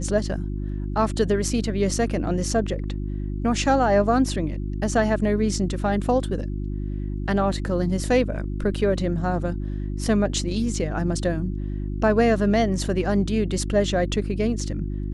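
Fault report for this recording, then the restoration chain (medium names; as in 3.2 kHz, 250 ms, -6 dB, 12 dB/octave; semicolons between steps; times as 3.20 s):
hum 50 Hz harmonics 7 -28 dBFS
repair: de-hum 50 Hz, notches 7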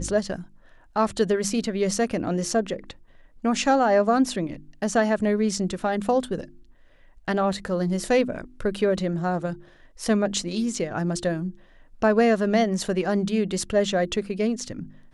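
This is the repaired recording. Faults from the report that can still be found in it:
nothing left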